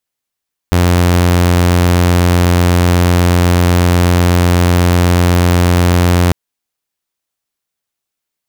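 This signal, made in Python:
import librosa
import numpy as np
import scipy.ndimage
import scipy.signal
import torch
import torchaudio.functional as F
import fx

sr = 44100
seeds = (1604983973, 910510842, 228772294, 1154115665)

y = 10.0 ** (-5.0 / 20.0) * (2.0 * np.mod(88.1 * (np.arange(round(5.6 * sr)) / sr), 1.0) - 1.0)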